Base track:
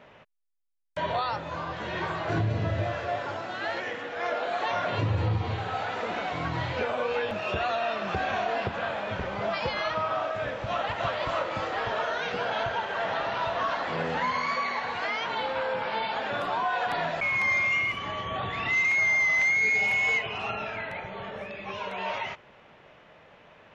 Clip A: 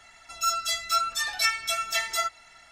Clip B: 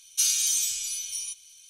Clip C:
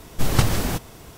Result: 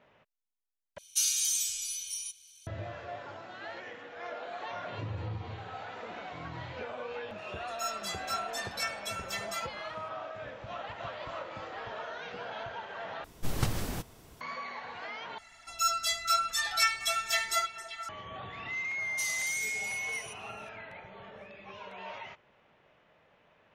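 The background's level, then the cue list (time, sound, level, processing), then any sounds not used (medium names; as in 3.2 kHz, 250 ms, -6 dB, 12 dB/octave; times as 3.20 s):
base track -11 dB
0.98 s: replace with B -4.5 dB
7.38 s: add A -10.5 dB
13.24 s: replace with C -11.5 dB
15.38 s: replace with A -2.5 dB + repeats whose band climbs or falls 145 ms, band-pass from 160 Hz, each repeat 1.4 oct, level -2.5 dB
19.00 s: add B -13 dB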